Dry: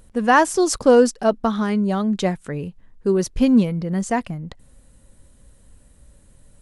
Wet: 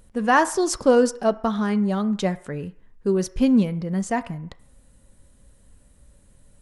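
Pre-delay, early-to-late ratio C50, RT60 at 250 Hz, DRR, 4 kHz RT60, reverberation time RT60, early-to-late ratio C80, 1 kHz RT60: 3 ms, 17.5 dB, 0.50 s, 11.0 dB, 0.65 s, 0.60 s, 20.5 dB, 0.65 s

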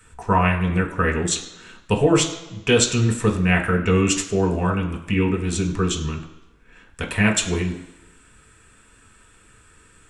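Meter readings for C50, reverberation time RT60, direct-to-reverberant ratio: 9.5 dB, 1.0 s, -0.5 dB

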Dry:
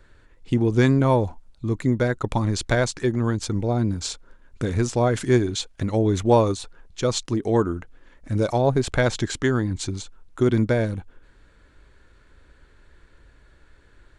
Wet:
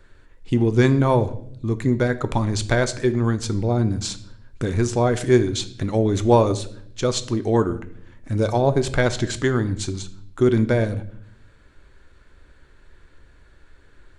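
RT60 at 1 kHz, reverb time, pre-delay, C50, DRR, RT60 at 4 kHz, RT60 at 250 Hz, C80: 0.55 s, 0.65 s, 3 ms, 15.0 dB, 10.5 dB, 0.60 s, 0.90 s, 18.5 dB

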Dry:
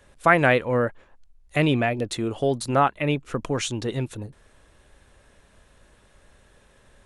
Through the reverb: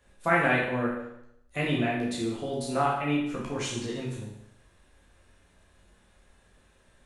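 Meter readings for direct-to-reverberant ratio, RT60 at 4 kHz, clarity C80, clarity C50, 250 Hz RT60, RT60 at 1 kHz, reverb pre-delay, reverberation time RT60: -5.0 dB, 0.75 s, 5.5 dB, 2.5 dB, 0.80 s, 0.75 s, 10 ms, 0.80 s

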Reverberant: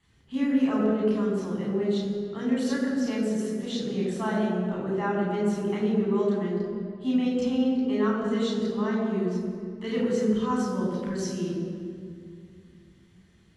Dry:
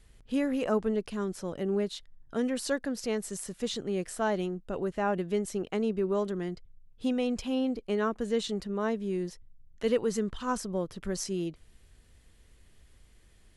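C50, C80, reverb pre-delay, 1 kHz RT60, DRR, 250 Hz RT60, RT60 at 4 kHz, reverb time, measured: 1.0 dB, 2.5 dB, 3 ms, 2.1 s, -4.0 dB, 3.3 s, 1.5 s, 2.3 s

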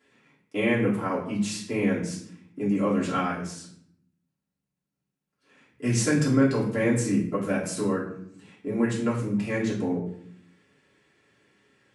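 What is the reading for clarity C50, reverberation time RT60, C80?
5.5 dB, 0.65 s, 9.5 dB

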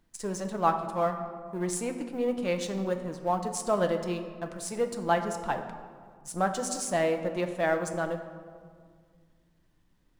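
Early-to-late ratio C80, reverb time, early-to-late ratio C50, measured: 10.0 dB, 1.9 s, 9.0 dB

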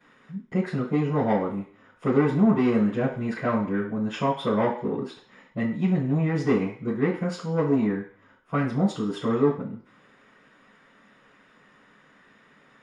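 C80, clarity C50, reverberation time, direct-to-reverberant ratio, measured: 10.5 dB, 7.0 dB, 0.50 s, -12.5 dB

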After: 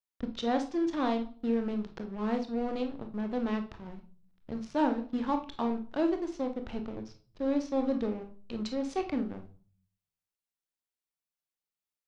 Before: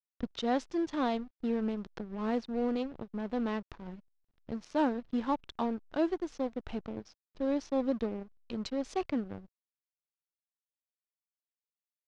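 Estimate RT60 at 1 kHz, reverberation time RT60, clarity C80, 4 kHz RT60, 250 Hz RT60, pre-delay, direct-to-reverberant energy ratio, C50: 0.40 s, 0.45 s, 17.5 dB, 0.40 s, 0.65 s, 24 ms, 5.5 dB, 11.0 dB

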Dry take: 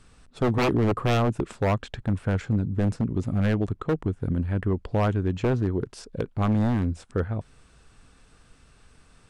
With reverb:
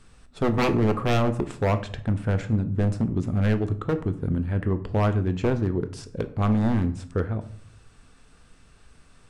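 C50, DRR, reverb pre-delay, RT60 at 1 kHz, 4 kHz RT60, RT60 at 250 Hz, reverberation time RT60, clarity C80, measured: 14.5 dB, 9.0 dB, 4 ms, 0.50 s, 0.35 s, 0.70 s, 0.55 s, 18.5 dB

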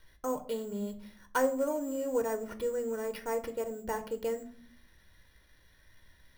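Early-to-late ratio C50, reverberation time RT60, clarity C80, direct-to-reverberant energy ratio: 15.0 dB, 0.50 s, 18.5 dB, 8.0 dB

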